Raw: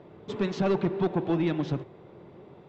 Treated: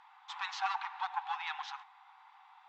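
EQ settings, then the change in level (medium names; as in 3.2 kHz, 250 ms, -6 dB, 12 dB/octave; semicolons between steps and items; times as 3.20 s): brick-wall FIR high-pass 750 Hz; distance through air 55 m; peaking EQ 2.5 kHz -3 dB 2 oct; +4.0 dB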